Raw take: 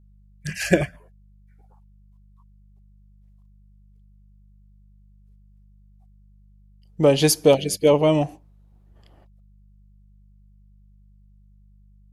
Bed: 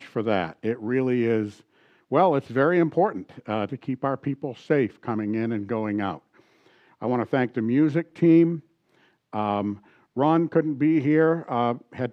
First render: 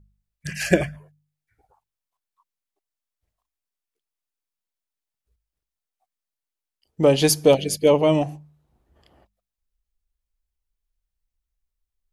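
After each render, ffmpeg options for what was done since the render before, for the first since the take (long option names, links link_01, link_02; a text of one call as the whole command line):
ffmpeg -i in.wav -af "bandreject=frequency=50:width_type=h:width=4,bandreject=frequency=100:width_type=h:width=4,bandreject=frequency=150:width_type=h:width=4,bandreject=frequency=200:width_type=h:width=4" out.wav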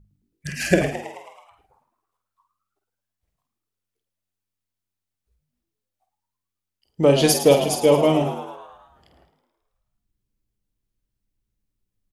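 ffmpeg -i in.wav -filter_complex "[0:a]asplit=2[link_01][link_02];[link_02]adelay=49,volume=-7dB[link_03];[link_01][link_03]amix=inputs=2:normalize=0,asplit=8[link_04][link_05][link_06][link_07][link_08][link_09][link_10][link_11];[link_05]adelay=108,afreqshift=92,volume=-11.5dB[link_12];[link_06]adelay=216,afreqshift=184,volume=-16.2dB[link_13];[link_07]adelay=324,afreqshift=276,volume=-21dB[link_14];[link_08]adelay=432,afreqshift=368,volume=-25.7dB[link_15];[link_09]adelay=540,afreqshift=460,volume=-30.4dB[link_16];[link_10]adelay=648,afreqshift=552,volume=-35.2dB[link_17];[link_11]adelay=756,afreqshift=644,volume=-39.9dB[link_18];[link_04][link_12][link_13][link_14][link_15][link_16][link_17][link_18]amix=inputs=8:normalize=0" out.wav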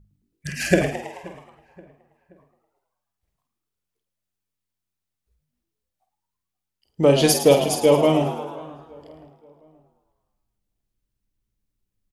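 ffmpeg -i in.wav -filter_complex "[0:a]asplit=2[link_01][link_02];[link_02]adelay=527,lowpass=frequency=1900:poles=1,volume=-21.5dB,asplit=2[link_03][link_04];[link_04]adelay=527,lowpass=frequency=1900:poles=1,volume=0.46,asplit=2[link_05][link_06];[link_06]adelay=527,lowpass=frequency=1900:poles=1,volume=0.46[link_07];[link_01][link_03][link_05][link_07]amix=inputs=4:normalize=0" out.wav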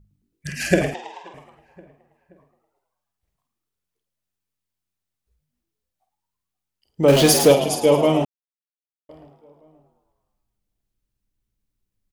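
ffmpeg -i in.wav -filter_complex "[0:a]asettb=1/sr,asplit=3[link_01][link_02][link_03];[link_01]atrim=end=0.944[link_04];[link_02]atrim=start=0.94:end=1.34,asetpts=PTS-STARTPTS,afade=type=in:duration=0.004:curve=qsin,afade=type=out:start_time=0.396:duration=0.004:curve=qsin,highpass=430,equalizer=frequency=590:width_type=q:width=4:gain=-9,equalizer=frequency=940:width_type=q:width=4:gain=6,equalizer=frequency=2100:width_type=q:width=4:gain=-7,equalizer=frequency=3600:width_type=q:width=4:gain=8,lowpass=frequency=6600:width=0.5412,lowpass=frequency=6600:width=1.3066[link_05];[link_03]atrim=start=1.336[link_06];[link_04][link_05]acrossfade=duration=0.004:curve1=hsin:curve2=qsin[link_07];[link_07][link_06]acrossfade=duration=0.004:curve1=qsin:curve2=hsin,asettb=1/sr,asplit=3[link_08][link_09][link_10];[link_08]atrim=end=7.084[link_11];[link_09]atrim=start=7.08:end=7.52,asetpts=PTS-STARTPTS,afade=type=in:duration=0.004:curve=qsin,afade=type=out:start_time=0.436:duration=0.004:curve=qsin,aeval=exprs='val(0)+0.5*0.126*sgn(val(0))':channel_layout=same[link_12];[link_10]atrim=start=7.516[link_13];[link_11][link_12]acrossfade=duration=0.004:curve1=hsin:curve2=qsin[link_14];[link_14][link_13]acrossfade=duration=0.004:curve1=qsin:curve2=hsin,asplit=3[link_15][link_16][link_17];[link_15]atrim=end=8.25,asetpts=PTS-STARTPTS,afade=type=out:start_time=8.246:duration=0.004:curve=hsin[link_18];[link_16]atrim=start=8.25:end=9.09,asetpts=PTS-STARTPTS,volume=0[link_19];[link_17]atrim=start=9.09,asetpts=PTS-STARTPTS,afade=type=in:duration=0.004:curve=hsin[link_20];[link_18][link_19][link_20]concat=n=3:v=0:a=1" out.wav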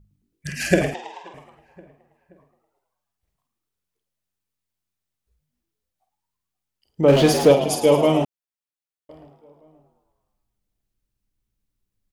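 ffmpeg -i in.wav -filter_complex "[0:a]asettb=1/sr,asplit=3[link_01][link_02][link_03];[link_01]atrim=end=7.014[link_04];[link_02]atrim=start=7.01:end=7.69,asetpts=PTS-STARTPTS,afade=type=in:duration=0.004:curve=qsin,afade=type=out:start_time=0.676:duration=0.004:curve=qsin,lowpass=frequency=2500:poles=1[link_05];[link_03]atrim=start=7.686[link_06];[link_04][link_05]acrossfade=duration=0.004:curve1=hsin:curve2=qsin[link_07];[link_07][link_06]acrossfade=duration=0.004:curve1=qsin:curve2=hsin" out.wav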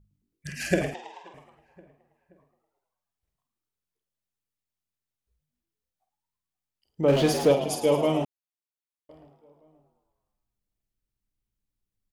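ffmpeg -i in.wav -af "volume=-6.5dB" out.wav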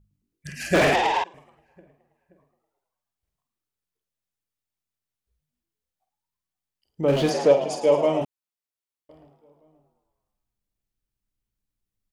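ffmpeg -i in.wav -filter_complex "[0:a]asettb=1/sr,asplit=3[link_01][link_02][link_03];[link_01]atrim=end=0.744[link_04];[link_02]atrim=start=0.74:end=1.24,asetpts=PTS-STARTPTS,afade=type=in:duration=0.004:curve=qsin,afade=type=out:start_time=0.496:duration=0.004:curve=qsin,asplit=2[link_05][link_06];[link_06]highpass=frequency=720:poles=1,volume=35dB,asoftclip=type=tanh:threshold=-10.5dB[link_07];[link_05][link_07]amix=inputs=2:normalize=0,lowpass=frequency=2800:poles=1,volume=-6dB[link_08];[link_03]atrim=start=1.236[link_09];[link_04][link_08]acrossfade=duration=0.004:curve1=hsin:curve2=qsin[link_10];[link_10][link_09]acrossfade=duration=0.004:curve1=qsin:curve2=hsin,asplit=3[link_11][link_12][link_13];[link_11]afade=type=out:start_time=7.29:duration=0.02[link_14];[link_12]highpass=170,equalizer=frequency=260:width_type=q:width=4:gain=-3,equalizer=frequency=580:width_type=q:width=4:gain=6,equalizer=frequency=930:width_type=q:width=4:gain=3,equalizer=frequency=1800:width_type=q:width=4:gain=3,equalizer=frequency=3400:width_type=q:width=4:gain=-5,lowpass=frequency=8000:width=0.5412,lowpass=frequency=8000:width=1.3066,afade=type=in:start_time=7.29:duration=0.02,afade=type=out:start_time=8.2:duration=0.02[link_15];[link_13]afade=type=in:start_time=8.2:duration=0.02[link_16];[link_14][link_15][link_16]amix=inputs=3:normalize=0" out.wav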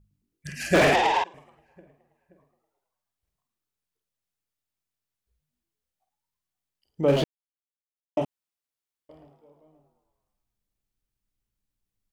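ffmpeg -i in.wav -filter_complex "[0:a]asplit=3[link_01][link_02][link_03];[link_01]atrim=end=7.24,asetpts=PTS-STARTPTS,afade=type=out:start_time=7.236:duration=0.004:curve=hsin[link_04];[link_02]atrim=start=7.24:end=8.17,asetpts=PTS-STARTPTS,volume=0[link_05];[link_03]atrim=start=8.17,asetpts=PTS-STARTPTS,afade=type=in:duration=0.004:curve=hsin[link_06];[link_04][link_05][link_06]concat=n=3:v=0:a=1" out.wav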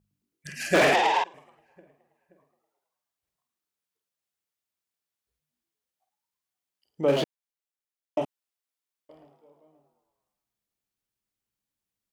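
ffmpeg -i in.wav -af "highpass=frequency=280:poles=1" out.wav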